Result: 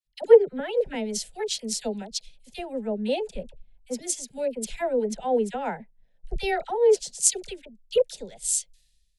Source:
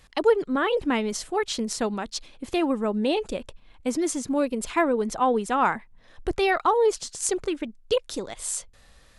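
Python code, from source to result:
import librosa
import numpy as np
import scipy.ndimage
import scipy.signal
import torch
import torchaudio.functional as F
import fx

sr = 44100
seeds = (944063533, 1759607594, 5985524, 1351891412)

y = fx.fixed_phaser(x, sr, hz=310.0, stages=6)
y = fx.dispersion(y, sr, late='lows', ms=48.0, hz=1000.0)
y = fx.band_widen(y, sr, depth_pct=100)
y = y * librosa.db_to_amplitude(-1.0)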